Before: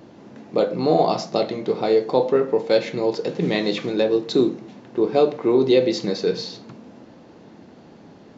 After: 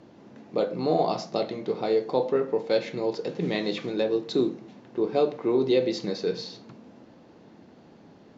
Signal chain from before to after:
low-pass filter 8,100 Hz
level −6 dB

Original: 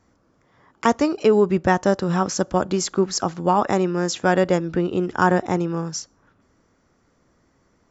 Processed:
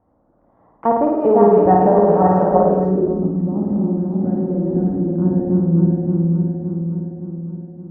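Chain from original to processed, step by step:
feedback delay that plays each chunk backwards 284 ms, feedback 73%, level −2 dB
high-shelf EQ 6,300 Hz −9.5 dB
notch filter 390 Hz, Q 12
flutter between parallel walls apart 9.2 metres, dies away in 1.1 s
low-pass filter sweep 760 Hz → 250 Hz, 0:02.60–0:03.30
level −2.5 dB

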